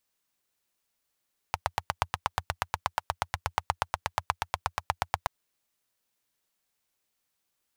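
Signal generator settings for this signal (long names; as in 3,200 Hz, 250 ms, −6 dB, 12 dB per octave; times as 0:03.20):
pulse-train model of a single-cylinder engine, steady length 3.73 s, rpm 1,000, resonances 87/890 Hz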